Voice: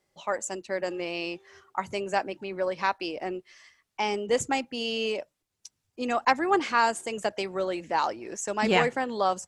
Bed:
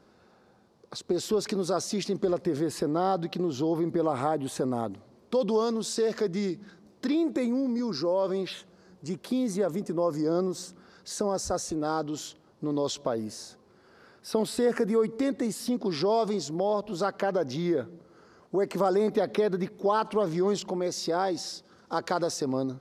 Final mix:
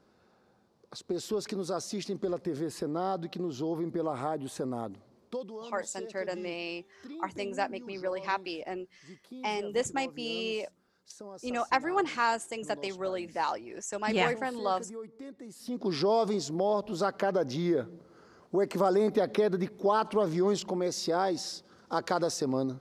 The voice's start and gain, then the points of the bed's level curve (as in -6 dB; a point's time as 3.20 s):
5.45 s, -4.5 dB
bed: 5.27 s -5.5 dB
5.50 s -17.5 dB
15.46 s -17.5 dB
15.89 s -1 dB